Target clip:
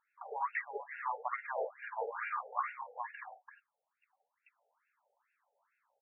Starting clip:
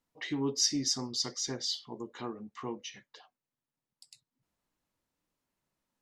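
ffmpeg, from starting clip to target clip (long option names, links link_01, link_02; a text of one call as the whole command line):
ffmpeg -i in.wav -af "aecho=1:1:70|79|117|339:0.562|0.668|0.398|0.473,afftfilt=real='re*between(b*sr/1024,600*pow(2000/600,0.5+0.5*sin(2*PI*2.3*pts/sr))/1.41,600*pow(2000/600,0.5+0.5*sin(2*PI*2.3*pts/sr))*1.41)':imag='im*between(b*sr/1024,600*pow(2000/600,0.5+0.5*sin(2*PI*2.3*pts/sr))/1.41,600*pow(2000/600,0.5+0.5*sin(2*PI*2.3*pts/sr))*1.41)':win_size=1024:overlap=0.75,volume=11.5dB" out.wav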